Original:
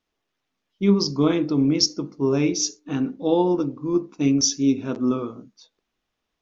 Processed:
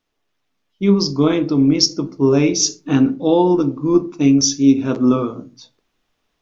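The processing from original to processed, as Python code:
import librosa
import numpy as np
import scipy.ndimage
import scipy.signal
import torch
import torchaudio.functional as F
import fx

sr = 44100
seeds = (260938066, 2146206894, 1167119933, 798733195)

y = fx.rider(x, sr, range_db=10, speed_s=0.5)
y = fx.room_shoebox(y, sr, seeds[0], volume_m3=130.0, walls='furnished', distance_m=0.36)
y = F.gain(torch.from_numpy(y), 5.5).numpy()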